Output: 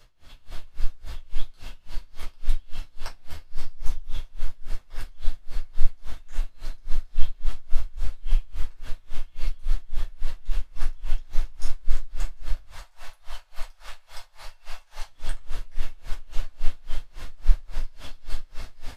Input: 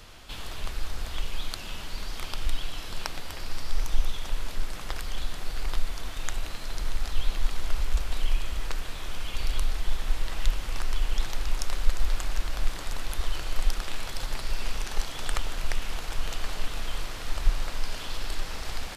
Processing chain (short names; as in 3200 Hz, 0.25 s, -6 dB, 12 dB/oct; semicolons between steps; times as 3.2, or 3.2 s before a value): 12.6–15.09 resonant low shelf 470 Hz -14 dB, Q 1.5; shoebox room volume 320 m³, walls furnished, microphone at 5.4 m; dB-linear tremolo 3.6 Hz, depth 27 dB; gain -12 dB